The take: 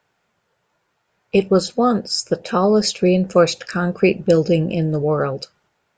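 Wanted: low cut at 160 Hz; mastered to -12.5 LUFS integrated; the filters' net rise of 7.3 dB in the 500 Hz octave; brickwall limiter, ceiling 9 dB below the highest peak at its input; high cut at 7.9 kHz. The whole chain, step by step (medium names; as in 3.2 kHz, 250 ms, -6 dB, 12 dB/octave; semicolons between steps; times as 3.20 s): high-pass 160 Hz; low-pass 7.9 kHz; peaking EQ 500 Hz +8.5 dB; trim +4 dB; peak limiter -1 dBFS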